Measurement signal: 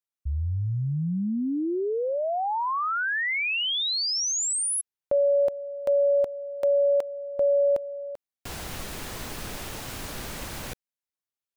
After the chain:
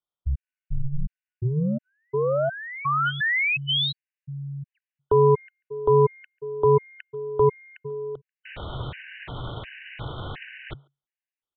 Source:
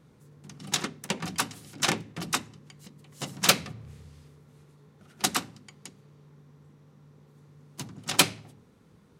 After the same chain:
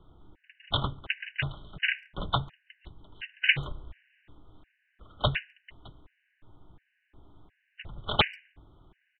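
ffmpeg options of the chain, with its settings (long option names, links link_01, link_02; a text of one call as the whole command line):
ffmpeg -i in.wav -filter_complex "[0:a]aeval=exprs='0.596*(cos(1*acos(clip(val(0)/0.596,-1,1)))-cos(1*PI/2))+0.0119*(cos(3*acos(clip(val(0)/0.596,-1,1)))-cos(3*PI/2))+0.075*(cos(8*acos(clip(val(0)/0.596,-1,1)))-cos(8*PI/2))':channel_layout=same,afreqshift=-140,aresample=8000,aresample=44100,equalizer=frequency=240:width=7.1:gain=-9,asplit=2[link_01][link_02];[link_02]adelay=140,highpass=300,lowpass=3400,asoftclip=type=hard:threshold=-16dB,volume=-29dB[link_03];[link_01][link_03]amix=inputs=2:normalize=0,afftfilt=real='re*gt(sin(2*PI*1.4*pts/sr)*(1-2*mod(floor(b*sr/1024/1500),2)),0)':imag='im*gt(sin(2*PI*1.4*pts/sr)*(1-2*mod(floor(b*sr/1024/1500),2)),0)':win_size=1024:overlap=0.75,volume=4.5dB" out.wav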